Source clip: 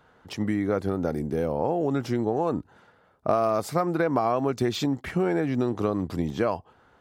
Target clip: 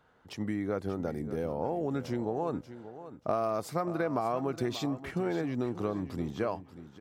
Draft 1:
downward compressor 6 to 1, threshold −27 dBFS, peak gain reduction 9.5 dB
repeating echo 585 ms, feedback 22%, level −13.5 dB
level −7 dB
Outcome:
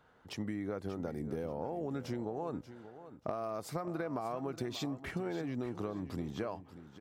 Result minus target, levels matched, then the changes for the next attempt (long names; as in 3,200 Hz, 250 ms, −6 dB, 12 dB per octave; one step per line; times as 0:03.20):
downward compressor: peak gain reduction +9.5 dB
remove: downward compressor 6 to 1, threshold −27 dBFS, peak gain reduction 9.5 dB